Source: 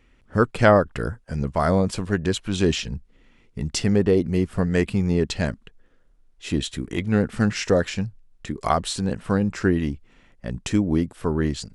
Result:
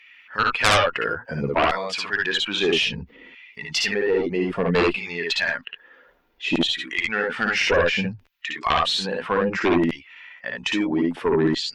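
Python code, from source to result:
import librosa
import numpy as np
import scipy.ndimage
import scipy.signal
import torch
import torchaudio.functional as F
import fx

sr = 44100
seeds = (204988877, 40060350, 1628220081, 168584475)

p1 = fx.bin_expand(x, sr, power=1.5)
p2 = fx.air_absorb(p1, sr, metres=240.0)
p3 = fx.filter_lfo_highpass(p2, sr, shape='saw_down', hz=0.61, low_hz=320.0, high_hz=2500.0, q=0.91)
p4 = fx.cheby_harmonics(p3, sr, harmonics=(3, 6, 7), levels_db=(-11, -20, -12), full_scale_db=-7.5)
p5 = p4 + fx.room_early_taps(p4, sr, ms=(58, 70), db=(-3.5, -4.5), dry=0)
p6 = fx.env_flatten(p5, sr, amount_pct=50)
y = p6 * librosa.db_to_amplitude(4.0)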